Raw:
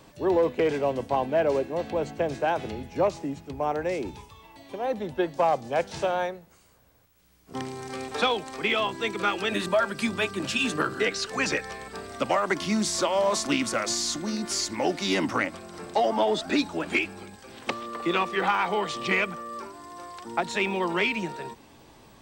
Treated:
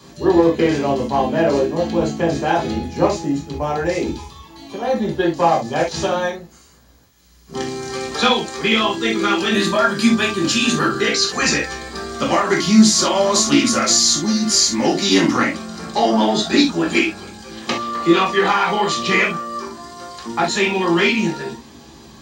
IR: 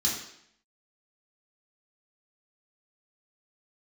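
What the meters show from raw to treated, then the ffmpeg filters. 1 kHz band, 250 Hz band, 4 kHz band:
+8.0 dB, +13.0 dB, +12.0 dB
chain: -filter_complex "[1:a]atrim=start_sample=2205,atrim=end_sample=3528[s0];[0:a][s0]afir=irnorm=-1:irlink=0,volume=1.19"

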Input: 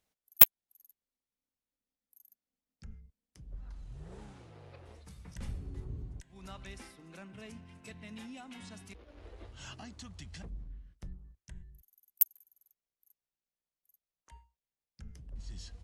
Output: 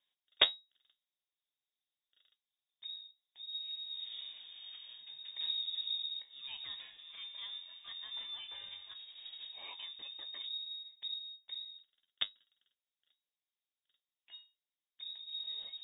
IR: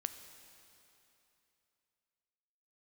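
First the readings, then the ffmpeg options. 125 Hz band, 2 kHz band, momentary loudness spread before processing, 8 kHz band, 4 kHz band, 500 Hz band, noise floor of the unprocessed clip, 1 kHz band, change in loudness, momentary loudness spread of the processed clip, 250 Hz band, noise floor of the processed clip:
under -25 dB, -1.5 dB, 24 LU, under -35 dB, +12.0 dB, no reading, under -85 dBFS, -5.5 dB, -14.5 dB, 13 LU, under -15 dB, under -85 dBFS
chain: -filter_complex "[0:a]equalizer=f=2400:w=6:g=-11.5,asplit=2[s0][s1];[s1]acrusher=samples=31:mix=1:aa=0.000001,volume=0.266[s2];[s0][s2]amix=inputs=2:normalize=0,flanger=delay=9:depth=8.5:regen=58:speed=0.4:shape=sinusoidal,lowpass=f=3200:t=q:w=0.5098,lowpass=f=3200:t=q:w=0.6013,lowpass=f=3200:t=q:w=0.9,lowpass=f=3200:t=q:w=2.563,afreqshift=-3800,volume=1.58"

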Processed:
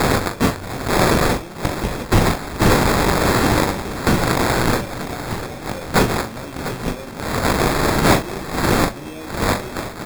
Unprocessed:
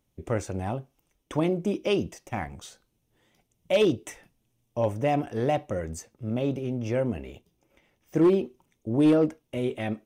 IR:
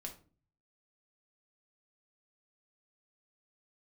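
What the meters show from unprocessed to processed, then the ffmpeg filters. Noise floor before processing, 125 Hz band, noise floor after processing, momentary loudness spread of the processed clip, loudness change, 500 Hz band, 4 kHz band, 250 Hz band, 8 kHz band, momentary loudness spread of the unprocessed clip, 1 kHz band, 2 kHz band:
-75 dBFS, +11.0 dB, -33 dBFS, 11 LU, +8.0 dB, +5.5 dB, +15.5 dB, +6.5 dB, +19.5 dB, 16 LU, +15.5 dB, +18.5 dB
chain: -af "aeval=exprs='val(0)+0.5*0.0158*sgn(val(0))':c=same,equalizer=f=6000:w=4.8:g=13,bandreject=f=50:t=h:w=6,bandreject=f=100:t=h:w=6,bandreject=f=150:t=h:w=6,bandreject=f=200:t=h:w=6,bandreject=f=250:t=h:w=6,bandreject=f=300:t=h:w=6,acompressor=threshold=0.0251:ratio=6,alimiter=level_in=1.88:limit=0.0631:level=0:latency=1:release=203,volume=0.531,acompressor=mode=upward:threshold=0.01:ratio=2.5,flanger=delay=19:depth=6.8:speed=0.55,aexciter=amount=9.6:drive=9.6:freq=4600,acrusher=samples=15:mix=1:aa=0.000001,aecho=1:1:41|698:0.398|0.266,volume=1.68"

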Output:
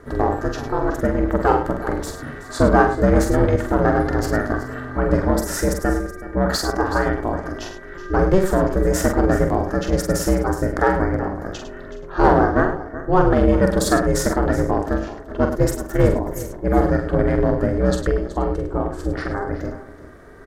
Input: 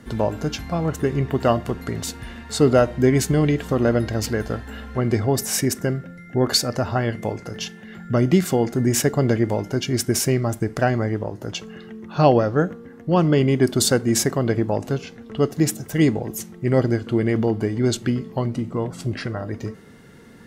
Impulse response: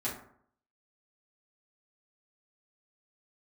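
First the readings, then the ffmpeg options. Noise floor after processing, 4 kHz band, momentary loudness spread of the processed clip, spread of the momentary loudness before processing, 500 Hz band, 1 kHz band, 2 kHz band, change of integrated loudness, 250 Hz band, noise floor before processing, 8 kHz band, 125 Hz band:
-36 dBFS, -5.5 dB, 11 LU, 13 LU, +2.5 dB, +6.5 dB, +4.5 dB, +1.5 dB, +1.0 dB, -43 dBFS, -4.5 dB, -1.0 dB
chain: -filter_complex "[0:a]asplit=2[s0][s1];[s1]aecho=0:1:374:0.168[s2];[s0][s2]amix=inputs=2:normalize=0,aeval=exprs='clip(val(0),-1,0.266)':c=same,highshelf=f=1900:t=q:w=3:g=-6.5,asplit=2[s3][s4];[s4]aecho=0:1:45|103:0.531|0.316[s5];[s3][s5]amix=inputs=2:normalize=0,aeval=exprs='val(0)*sin(2*PI*190*n/s)':c=same,volume=1.58"

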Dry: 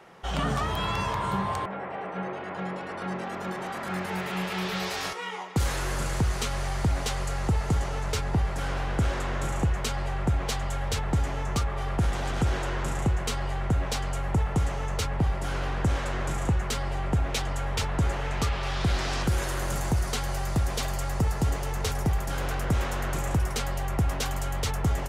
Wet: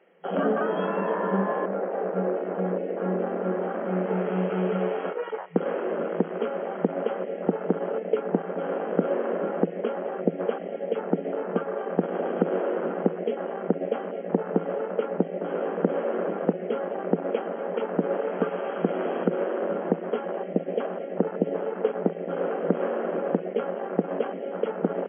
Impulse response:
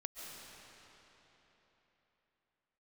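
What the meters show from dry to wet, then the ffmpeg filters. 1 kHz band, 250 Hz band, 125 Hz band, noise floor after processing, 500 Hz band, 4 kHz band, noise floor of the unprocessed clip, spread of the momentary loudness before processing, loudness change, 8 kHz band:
-0.5 dB, +5.0 dB, -9.0 dB, -36 dBFS, +10.5 dB, under -15 dB, -35 dBFS, 5 LU, +1.0 dB, under -40 dB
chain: -af "afwtdn=0.0316,acontrast=87,afftfilt=real='re*between(b*sr/4096,170,3300)':imag='im*between(b*sr/4096,170,3300)':win_size=4096:overlap=0.75,equalizer=f=500:t=o:w=1:g=11,equalizer=f=1000:t=o:w=1:g=-9,equalizer=f=2000:t=o:w=1:g=4,volume=0.708"

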